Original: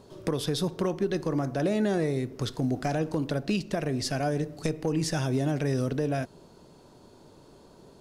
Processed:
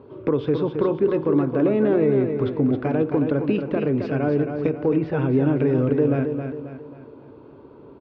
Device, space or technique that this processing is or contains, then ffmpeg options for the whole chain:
bass cabinet: -filter_complex "[0:a]asettb=1/sr,asplit=3[a][b][c];[a]atrim=end=4.834[d];[b]atrim=start=4.83:end=5.32,asetpts=PTS-STARTPTS,afade=t=in:d=0.004:c=qsin,afade=t=out:st=0.486:d=0.004:c=qsin,lowpass=3.7k[e];[c]atrim=start=5.316[f];[d][e]acrossfade=d=0.004:c1=hsin:c2=qsin[g];[g][f]acrossfade=d=0.004:c1=qsin:c2=hsin,highpass=71,equalizer=f=180:t=q:w=4:g=-9,equalizer=f=280:t=q:w=4:g=4,equalizer=f=440:t=q:w=4:g=4,equalizer=f=700:t=q:w=4:g=-8,equalizer=f=1.8k:t=q:w=4:g=-9,lowpass=f=2.3k:w=0.5412,lowpass=f=2.3k:w=1.3066,aecho=1:1:269|538|807|1076|1345:0.447|0.197|0.0865|0.0381|0.0167,volume=6.5dB"

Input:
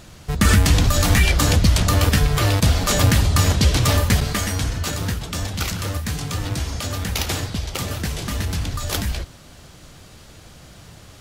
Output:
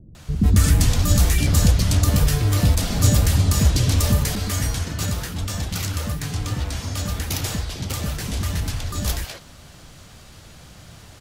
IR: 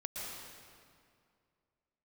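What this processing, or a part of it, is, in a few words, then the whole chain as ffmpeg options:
one-band saturation: -filter_complex "[0:a]acrossover=split=480|4900[a][b][c];[b]asoftclip=type=tanh:threshold=-30.5dB[d];[a][d][c]amix=inputs=3:normalize=0,asettb=1/sr,asplit=3[e][f][g];[e]atrim=end=6.074[h];[f]atrim=start=6.07:end=6.62,asetpts=PTS-STARTPTS,afade=t=in:d=0.004:c=qsin,afade=t=out:st=0.546:d=0.004:c=qsin,highshelf=f=8.7k:g=-6[i];[g]atrim=start=6.616[j];[h][i]acrossfade=d=0.004:c1=hsin:c2=qsin[k];[k][j]acrossfade=d=0.004:c1=qsin:c2=hsin,acrossover=split=380[l][m];[m]adelay=150[n];[l][n]amix=inputs=2:normalize=0"

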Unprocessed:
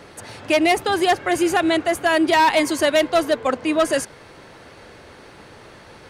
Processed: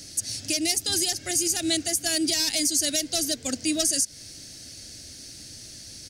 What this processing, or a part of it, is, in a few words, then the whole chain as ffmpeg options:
over-bright horn tweeter: -af "firequalizer=gain_entry='entry(110,0);entry(180,-6);entry(280,-1);entry(420,-17);entry(650,-12);entry(980,-28);entry(1600,-11);entry(2900,0);entry(4900,10);entry(7400,1)':delay=0.05:min_phase=1,highshelf=f=4.9k:t=q:w=1.5:g=11.5,alimiter=limit=-12dB:level=0:latency=1:release=161"

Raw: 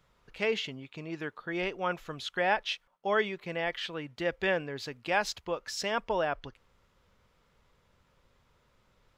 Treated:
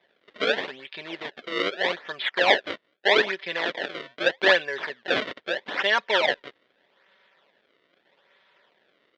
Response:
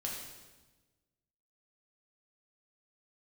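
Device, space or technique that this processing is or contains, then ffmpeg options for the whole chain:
circuit-bent sampling toy: -filter_complex "[0:a]asettb=1/sr,asplit=3[a][b][c];[a]atrim=end=2.194[d];[b]atrim=start=2.19:end=2.68,asetpts=PTS-STARTPTS,afade=t=in:d=0.004:c=qsin,afade=t=out:st=0.486:d=0.004:c=qsin,highshelf=f=4.8k:g=-3.5[e];[c]atrim=start=2.676[f];[d][e]acrossfade=d=0.004:c1=hsin:c2=qsin[g];[g][f]acrossfade=d=0.004:c1=qsin:c2=hsin,aecho=1:1:5.2:0.59,acrusher=samples=30:mix=1:aa=0.000001:lfo=1:lforange=48:lforate=0.8,highpass=540,equalizer=f=820:t=q:w=4:g=-4,equalizer=f=1.2k:t=q:w=4:g=-6,equalizer=f=1.8k:t=q:w=4:g=8,equalizer=f=3.4k:t=q:w=4:g=7,lowpass=f=4.1k:w=0.5412,lowpass=f=4.1k:w=1.3066,volume=8.5dB"

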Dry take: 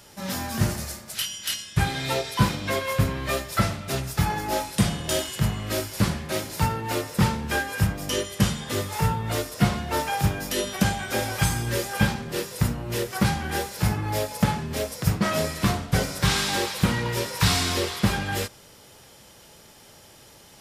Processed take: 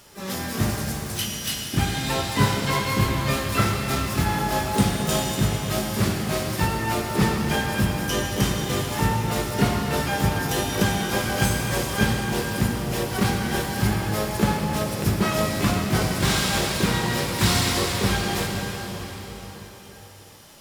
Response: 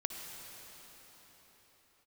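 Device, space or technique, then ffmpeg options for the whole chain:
shimmer-style reverb: -filter_complex "[0:a]asettb=1/sr,asplit=3[a][b][c];[a]atrim=end=2.284[d];[b]atrim=start=2.28:end=4.19,asetpts=PTS-STARTPTS,afade=t=in:d=0.004:c=qsin,afade=t=out:st=1.906:d=0.004:c=qsin,asplit=2[e][f];[f]adelay=29,volume=-5.5dB[g];[e][g]amix=inputs=2:normalize=0,atrim=end_sample=84231[h];[c]atrim=start=4.186[i];[d][h]acrossfade=d=0.004:c1=hsin:c2=qsin[j];[j][i]acrossfade=d=0.004:c1=qsin:c2=hsin,asplit=2[k][l];[l]asetrate=88200,aresample=44100,atempo=0.5,volume=-7dB[m];[k][m]amix=inputs=2:normalize=0[n];[1:a]atrim=start_sample=2205[o];[n][o]afir=irnorm=-1:irlink=0"

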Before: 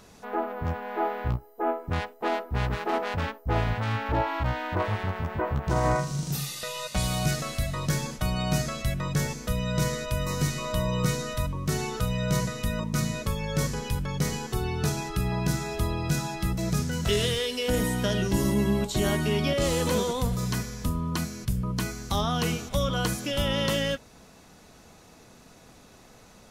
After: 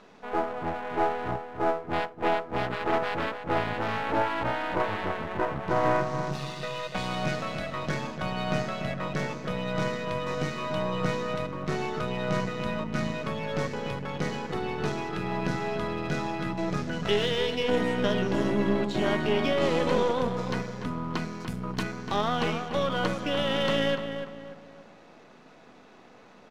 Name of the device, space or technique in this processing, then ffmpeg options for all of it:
crystal radio: -filter_complex "[0:a]asettb=1/sr,asplit=3[a][b][c];[a]atrim=end=21.404[d];[b]atrim=start=21.4:end=21.83,asetpts=PTS-STARTPTS,afade=t=in:d=0.004:c=qsin,afade=t=out:st=0.426:d=0.004:c=qsin,aemphasis=mode=production:type=50fm[e];[c]atrim=start=21.826[f];[d][e]acrossfade=d=0.004:c1=hsin:c2=qsin[g];[g][f]acrossfade=d=0.004:c1=qsin:c2=hsin,highpass=220,lowpass=2.9k,asplit=2[h][i];[i]adelay=292,lowpass=f=2.1k:p=1,volume=-7.5dB,asplit=2[j][k];[k]adelay=292,lowpass=f=2.1k:p=1,volume=0.4,asplit=2[l][m];[m]adelay=292,lowpass=f=2.1k:p=1,volume=0.4,asplit=2[n][o];[o]adelay=292,lowpass=f=2.1k:p=1,volume=0.4,asplit=2[p][q];[q]adelay=292,lowpass=f=2.1k:p=1,volume=0.4[r];[h][j][l][n][p][r]amix=inputs=6:normalize=0,aeval=exprs='if(lt(val(0),0),0.447*val(0),val(0))':c=same,volume=4dB"

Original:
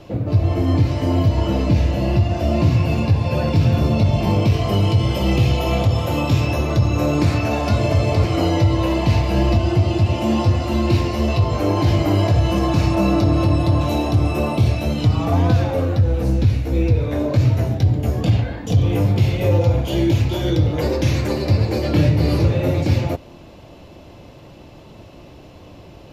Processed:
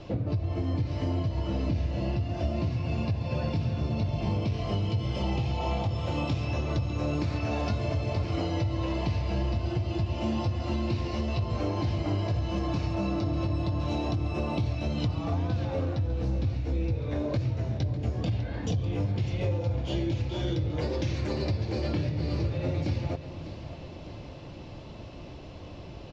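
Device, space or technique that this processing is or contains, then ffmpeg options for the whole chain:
ASMR close-microphone chain: -filter_complex "[0:a]asettb=1/sr,asplit=3[a][b][c];[a]atrim=end=5.234[d];[b]atrim=start=5.23:end=5.89,asetpts=PTS-STARTPTS,afade=t=in:d=0.004:c=qsin,afade=t=out:st=0.656:d=0.004:c=qsin,equalizer=f=840:t=o:w=0.35:g=10.5[e];[c]atrim=start=5.886[f];[d][e]acrossfade=d=0.004:c1=hsin:c2=qsin[g];[g][f]acrossfade=d=0.004:c1=qsin:c2=hsin,lowpass=f=5.8k:w=0.5412,lowpass=f=5.8k:w=1.3066,lowshelf=f=110:g=4.5,acompressor=threshold=-23dB:ratio=6,highshelf=f=6k:g=6,aecho=1:1:601|1202|1803|2404|3005:0.211|0.114|0.0616|0.0333|0.018,volume=-3.5dB"

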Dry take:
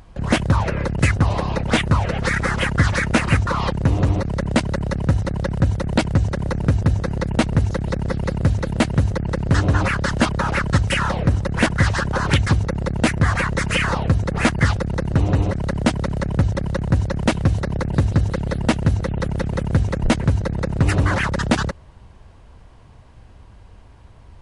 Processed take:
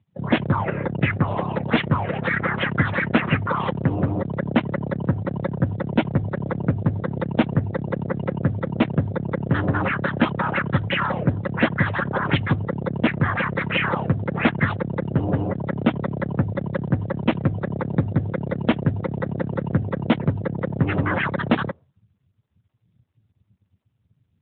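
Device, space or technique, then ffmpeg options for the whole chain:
mobile call with aggressive noise cancelling: -af "highpass=120,afftdn=nr=34:nf=-36" -ar 8000 -c:a libopencore_amrnb -b:a 12200

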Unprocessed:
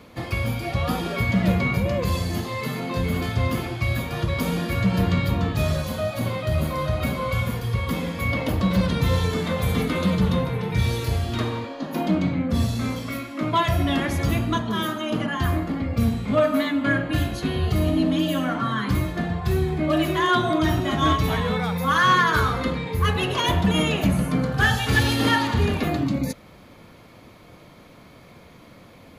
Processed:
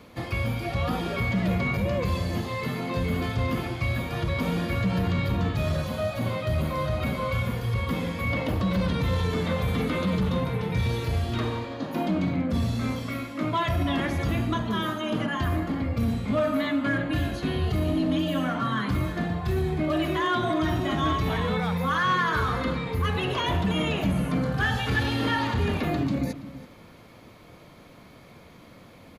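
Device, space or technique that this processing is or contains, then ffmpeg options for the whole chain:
limiter into clipper: -filter_complex "[0:a]alimiter=limit=-15.5dB:level=0:latency=1:release=17,asoftclip=type=hard:threshold=-16.5dB,acrossover=split=4100[a][b];[b]acompressor=threshold=-45dB:ratio=4:attack=1:release=60[c];[a][c]amix=inputs=2:normalize=0,asplit=2[d][e];[e]adelay=332.4,volume=-14dB,highshelf=f=4k:g=-7.48[f];[d][f]amix=inputs=2:normalize=0,volume=-2dB"

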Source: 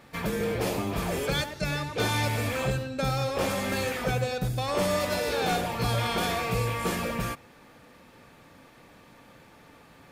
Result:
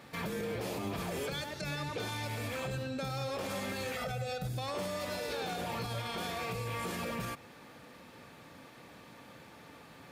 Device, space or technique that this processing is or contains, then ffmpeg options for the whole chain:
broadcast voice chain: -filter_complex "[0:a]asettb=1/sr,asplit=3[a][b][c];[a]atrim=end=3.954[d];[b]atrim=start=3.95:end=4.47,asetpts=PTS-STARTPTS,afade=t=in:d=0.004:c=qsin,afade=t=out:st=0.516:d=0.004:c=qsin,aecho=1:1:1.5:0.89,atrim=end_sample=22932[e];[c]atrim=start=4.466[f];[d][e]acrossfade=d=0.004:c1=hsin:c2=qsin[g];[g][f]acrossfade=d=0.004:c1=qsin:c2=hsin,highpass=74,deesser=0.6,acompressor=threshold=-33dB:ratio=3,equalizer=f=4k:t=o:w=0.77:g=2,alimiter=level_in=4.5dB:limit=-24dB:level=0:latency=1:release=59,volume=-4.5dB"

